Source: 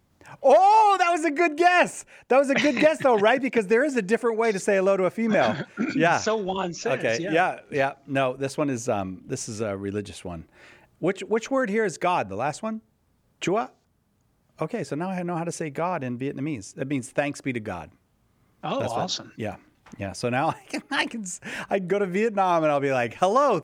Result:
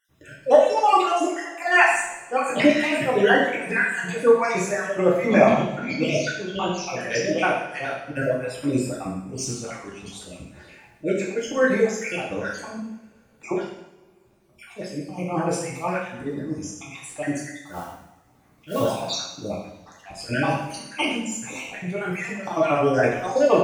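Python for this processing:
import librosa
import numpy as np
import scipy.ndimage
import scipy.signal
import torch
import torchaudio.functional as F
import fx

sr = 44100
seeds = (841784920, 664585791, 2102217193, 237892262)

y = fx.spec_dropout(x, sr, seeds[0], share_pct=53)
y = fx.mod_noise(y, sr, seeds[1], snr_db=18, at=(17.58, 18.81))
y = fx.auto_swell(y, sr, attack_ms=100.0)
y = fx.rev_double_slope(y, sr, seeds[2], early_s=0.8, late_s=3.4, knee_db=-27, drr_db=-6.0)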